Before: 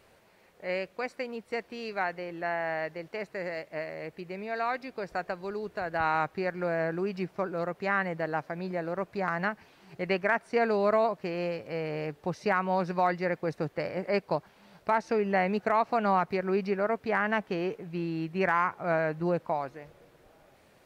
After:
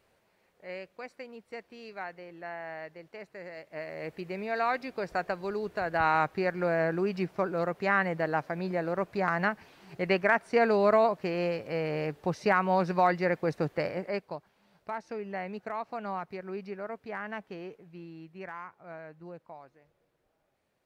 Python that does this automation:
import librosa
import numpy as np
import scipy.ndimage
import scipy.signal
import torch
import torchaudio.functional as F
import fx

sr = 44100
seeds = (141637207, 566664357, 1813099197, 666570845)

y = fx.gain(x, sr, db=fx.line((3.53, -8.5), (4.09, 2.0), (13.85, 2.0), (14.35, -10.0), (17.51, -10.0), (18.78, -17.0)))